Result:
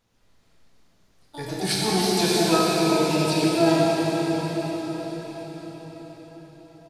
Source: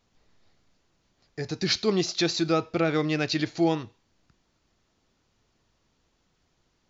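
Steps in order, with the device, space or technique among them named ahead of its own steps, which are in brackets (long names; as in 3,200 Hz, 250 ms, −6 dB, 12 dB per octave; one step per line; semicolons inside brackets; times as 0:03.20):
0:02.70–0:03.44: elliptic band-stop filter 450–2,400 Hz
slap from a distant wall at 19 metres, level −30 dB
shimmer-style reverb (pitch-shifted copies added +12 semitones −5 dB; convolution reverb RT60 6.1 s, pre-delay 11 ms, DRR −6 dB)
level −3 dB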